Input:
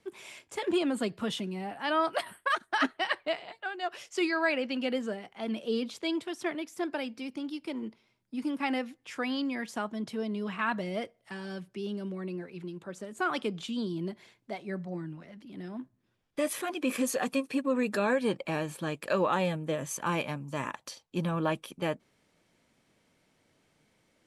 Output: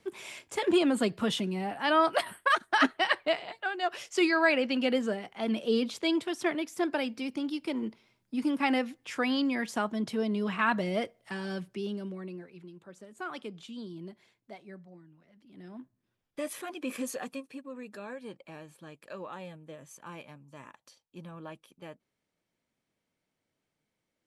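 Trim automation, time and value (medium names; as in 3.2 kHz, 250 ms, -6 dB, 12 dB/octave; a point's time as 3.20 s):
11.62 s +3.5 dB
12.67 s -8.5 dB
14.59 s -8.5 dB
15.08 s -18 dB
15.70 s -5.5 dB
17.10 s -5.5 dB
17.66 s -14.5 dB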